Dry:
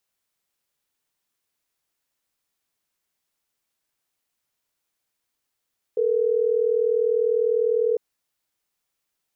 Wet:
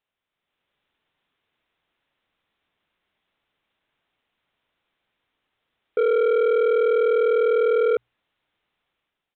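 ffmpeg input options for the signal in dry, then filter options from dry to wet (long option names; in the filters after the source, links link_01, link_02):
-f lavfi -i "aevalsrc='0.0891*(sin(2*PI*440*t)+sin(2*PI*480*t))*clip(min(mod(t,6),2-mod(t,6))/0.005,0,1)':duration=3.12:sample_rate=44100"
-af "bandreject=frequency=60:width_type=h:width=6,bandreject=frequency=120:width_type=h:width=6,dynaudnorm=framelen=150:gausssize=7:maxgain=9dB,aresample=8000,asoftclip=type=tanh:threshold=-16.5dB,aresample=44100"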